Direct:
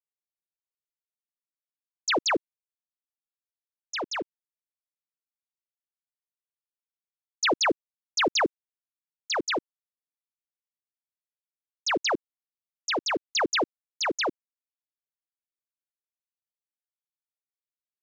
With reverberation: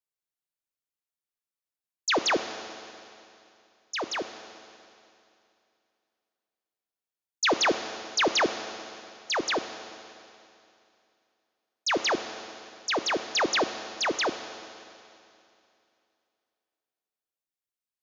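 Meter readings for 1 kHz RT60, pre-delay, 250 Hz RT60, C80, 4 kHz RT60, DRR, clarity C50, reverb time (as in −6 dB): 2.7 s, 9 ms, 2.7 s, 10.5 dB, 2.7 s, 9.0 dB, 10.0 dB, 2.7 s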